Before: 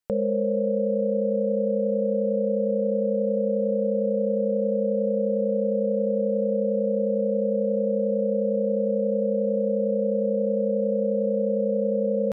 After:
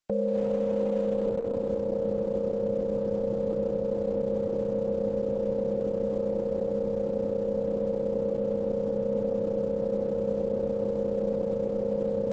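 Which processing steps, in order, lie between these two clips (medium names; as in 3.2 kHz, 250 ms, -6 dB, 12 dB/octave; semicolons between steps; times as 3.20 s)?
peak limiter -19 dBFS, peak gain reduction 4 dB; Opus 10 kbps 48 kHz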